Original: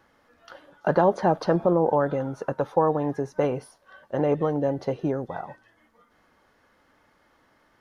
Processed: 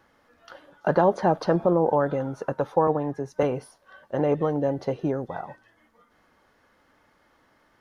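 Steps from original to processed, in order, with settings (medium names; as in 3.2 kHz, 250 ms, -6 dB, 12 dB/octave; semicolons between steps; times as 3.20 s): 2.87–3.43 s: three bands expanded up and down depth 100%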